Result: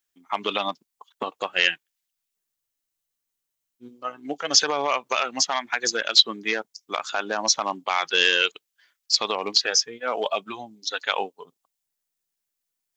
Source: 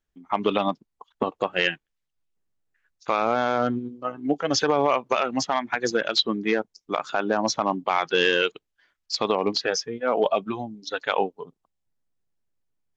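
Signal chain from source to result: tilt EQ +4 dB/octave; spectral freeze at 2.58 s, 1.23 s; trim -1.5 dB

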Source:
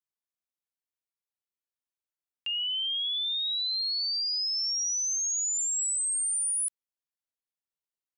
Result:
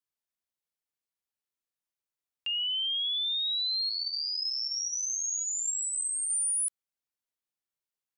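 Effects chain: 3.89–6.30 s: chorus voices 2, 1.4 Hz, delay 10 ms, depth 3 ms

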